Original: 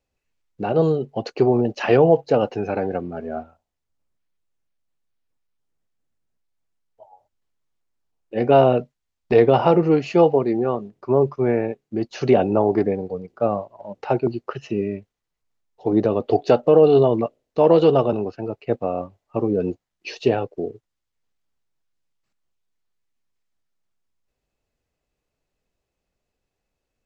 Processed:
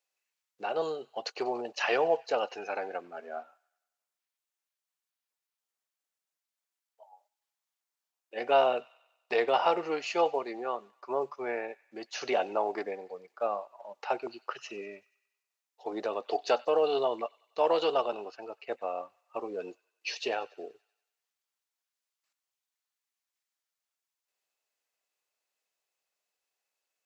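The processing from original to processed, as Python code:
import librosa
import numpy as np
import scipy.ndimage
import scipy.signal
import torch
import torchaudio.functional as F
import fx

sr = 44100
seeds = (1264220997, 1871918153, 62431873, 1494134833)

p1 = scipy.signal.sosfilt(scipy.signal.butter(2, 780.0, 'highpass', fs=sr, output='sos'), x)
p2 = fx.high_shelf(p1, sr, hz=4600.0, db=7.0)
p3 = p2 + fx.echo_wet_highpass(p2, sr, ms=95, feedback_pct=55, hz=1600.0, wet_db=-20.0, dry=0)
y = p3 * 10.0 ** (-4.0 / 20.0)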